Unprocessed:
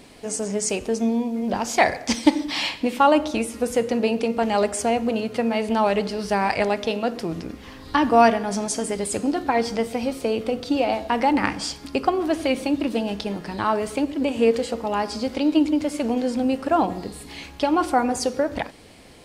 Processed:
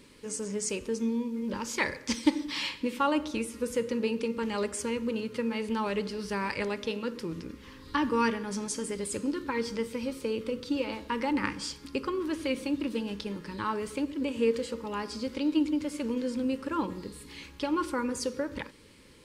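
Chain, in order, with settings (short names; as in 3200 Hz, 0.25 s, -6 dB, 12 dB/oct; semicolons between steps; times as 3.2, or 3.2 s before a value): Butterworth band-stop 710 Hz, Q 2.2; gain -7.5 dB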